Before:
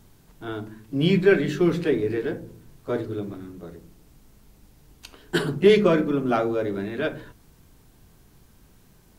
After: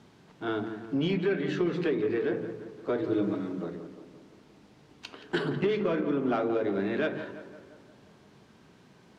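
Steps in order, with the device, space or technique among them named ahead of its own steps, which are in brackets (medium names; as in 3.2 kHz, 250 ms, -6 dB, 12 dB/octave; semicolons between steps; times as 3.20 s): AM radio (band-pass 170–4200 Hz; compression 6:1, threshold -27 dBFS, peak gain reduction 15 dB; saturation -21 dBFS, distortion -22 dB); 3.02–3.64 s: comb 6.3 ms, depth 89%; tape echo 172 ms, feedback 61%, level -9.5 dB, low-pass 2.4 kHz; trim +3 dB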